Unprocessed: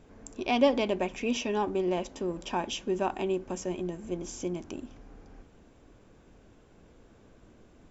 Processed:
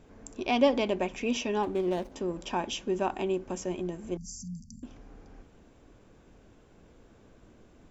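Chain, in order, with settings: 1.63–2.12 s: median filter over 25 samples; 4.17–4.83 s: brick-wall FIR band-stop 240–4400 Hz

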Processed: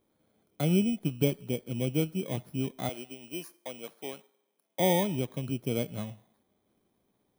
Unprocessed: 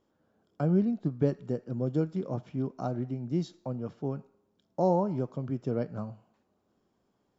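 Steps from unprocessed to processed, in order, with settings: bit-reversed sample order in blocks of 16 samples; 2.89–4.80 s: high-pass 480 Hz 12 dB/octave

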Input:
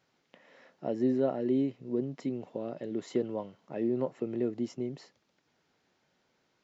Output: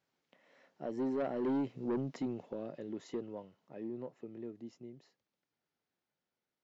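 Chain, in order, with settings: Doppler pass-by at 1.83 s, 10 m/s, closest 4.5 m; saturation -31 dBFS, distortion -10 dB; trim +2 dB

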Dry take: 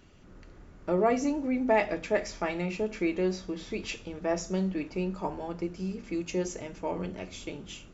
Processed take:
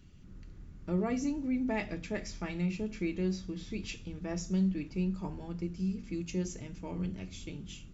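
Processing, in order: FFT filter 170 Hz 0 dB, 610 Hz -17 dB, 3.9 kHz -7 dB; trim +3 dB

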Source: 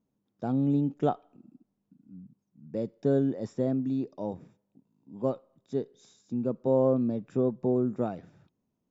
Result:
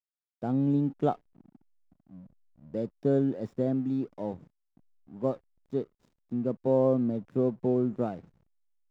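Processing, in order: treble shelf 2.5 kHz -2 dB; hysteresis with a dead band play -48.5 dBFS

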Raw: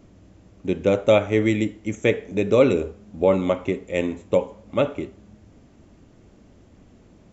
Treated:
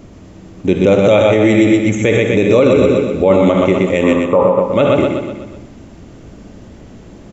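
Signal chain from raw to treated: 4.03–4.62 s: resonant low-pass 1.2 kHz, resonance Q 4.9; feedback delay 124 ms, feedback 51%, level -5.5 dB; on a send at -9.5 dB: reverberation RT60 0.40 s, pre-delay 55 ms; on the sum: loudness maximiser +14 dB; trim -1 dB

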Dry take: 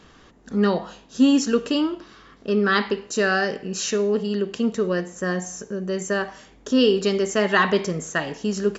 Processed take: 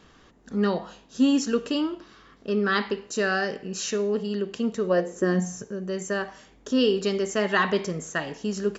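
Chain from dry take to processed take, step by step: 4.89–5.63 s: peaking EQ 790 Hz -> 120 Hz +14.5 dB 0.83 oct; trim -4 dB

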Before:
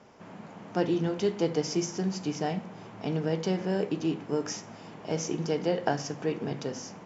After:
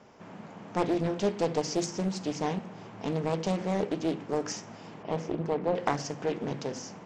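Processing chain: 5.02–5.74 s: low-pass 2.8 kHz -> 1.5 kHz 12 dB/octave; loudspeaker Doppler distortion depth 0.62 ms

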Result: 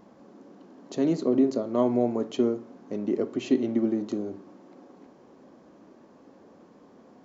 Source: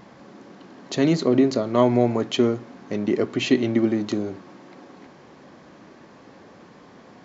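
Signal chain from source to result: ten-band graphic EQ 125 Hz -6 dB, 250 Hz +5 dB, 500 Hz +3 dB, 2 kHz -7 dB, 4 kHz -5 dB; on a send: reverberation RT60 0.40 s, pre-delay 30 ms, DRR 14 dB; on the sum: trim -8 dB

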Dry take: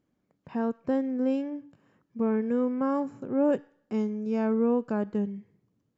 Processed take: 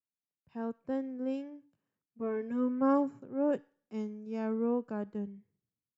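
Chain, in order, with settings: 2.18–3.19 s: comb 7.3 ms, depth 84%; three bands expanded up and down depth 70%; trim -7.5 dB

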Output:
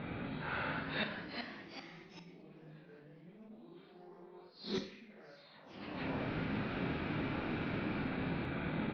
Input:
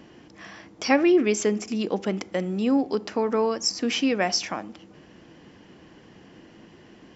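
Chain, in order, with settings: phase randomisation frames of 200 ms; saturation -19.5 dBFS, distortion -12 dB; reverse; compression 8:1, threshold -31 dBFS, peak gain reduction 10 dB; reverse; elliptic low-pass 4.7 kHz, stop band 40 dB; hum notches 60/120/180/240/300/360/420/480/540 Hz; echo from a far wall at 63 m, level -17 dB; inverted gate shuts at -31 dBFS, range -29 dB; gain riding within 5 dB 0.5 s; tape speed -20%; ever faster or slower copies 487 ms, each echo +2 st, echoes 3, each echo -6 dB; Schroeder reverb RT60 0.55 s, combs from 26 ms, DRR 9 dB; attacks held to a fixed rise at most 140 dB/s; trim +9.5 dB

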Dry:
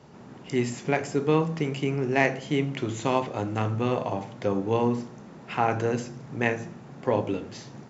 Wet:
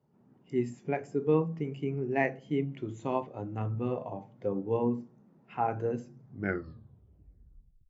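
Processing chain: tape stop on the ending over 1.72 s; spectral contrast expander 1.5:1; trim -6.5 dB

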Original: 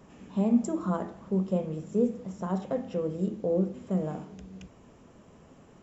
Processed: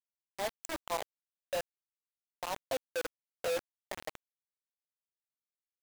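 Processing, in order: reverb removal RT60 1.5 s; steep high-pass 270 Hz 96 dB/octave; 1.79–2.49 s: compression, threshold -33 dBFS, peak gain reduction 9.5 dB; static phaser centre 1.4 kHz, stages 6; bit crusher 6-bit; trim +1 dB

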